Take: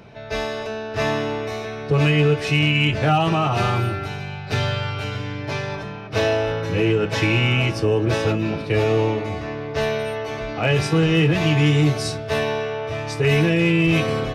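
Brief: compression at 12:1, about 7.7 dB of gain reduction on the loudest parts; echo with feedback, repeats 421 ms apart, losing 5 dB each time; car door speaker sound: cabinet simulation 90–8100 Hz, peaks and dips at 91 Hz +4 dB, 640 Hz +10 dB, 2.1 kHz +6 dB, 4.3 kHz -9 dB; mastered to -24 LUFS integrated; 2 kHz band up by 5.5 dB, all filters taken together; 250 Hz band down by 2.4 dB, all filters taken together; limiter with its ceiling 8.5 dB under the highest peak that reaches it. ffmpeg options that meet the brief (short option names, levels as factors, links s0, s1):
-af "equalizer=f=250:t=o:g=-4.5,equalizer=f=2000:t=o:g=3.5,acompressor=threshold=0.0794:ratio=12,alimiter=limit=0.0891:level=0:latency=1,highpass=90,equalizer=f=91:t=q:w=4:g=4,equalizer=f=640:t=q:w=4:g=10,equalizer=f=2100:t=q:w=4:g=6,equalizer=f=4300:t=q:w=4:g=-9,lowpass=f=8100:w=0.5412,lowpass=f=8100:w=1.3066,aecho=1:1:421|842|1263|1684|2105|2526|2947:0.562|0.315|0.176|0.0988|0.0553|0.031|0.0173,volume=1.12"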